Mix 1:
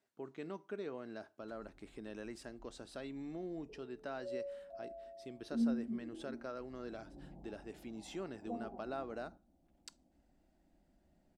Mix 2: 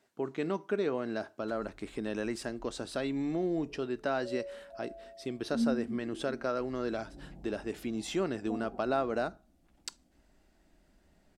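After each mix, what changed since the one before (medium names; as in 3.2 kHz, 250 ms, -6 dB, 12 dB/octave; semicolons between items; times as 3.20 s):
speech +12.0 dB; background: add tilt EQ -1.5 dB/octave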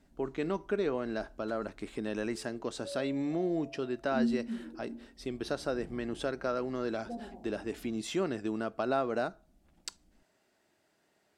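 background: entry -1.40 s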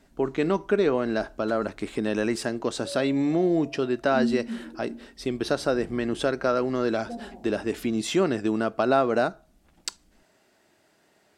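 speech +9.0 dB; background +4.0 dB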